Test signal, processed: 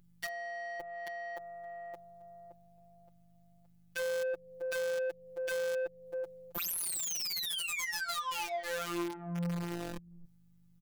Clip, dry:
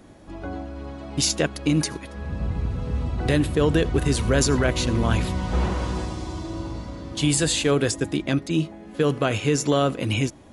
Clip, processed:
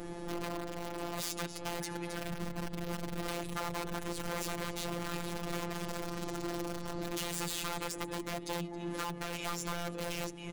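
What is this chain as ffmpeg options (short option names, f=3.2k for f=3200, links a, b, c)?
-af "lowpass=f=1.3k:p=1,aemphasis=mode=production:type=75fm,aecho=1:1:2.4:0.36,aecho=1:1:269:0.1,acompressor=threshold=-37dB:ratio=6,aeval=exprs='val(0)+0.000355*(sin(2*PI*50*n/s)+sin(2*PI*2*50*n/s)/2+sin(2*PI*3*50*n/s)/3+sin(2*PI*4*50*n/s)/4+sin(2*PI*5*50*n/s)/5)':c=same,aeval=exprs='(mod(47.3*val(0)+1,2)-1)/47.3':c=same,acontrast=56,asoftclip=type=tanh:threshold=-38dB,afftfilt=real='hypot(re,im)*cos(PI*b)':imag='0':win_size=1024:overlap=0.75,volume=6.5dB"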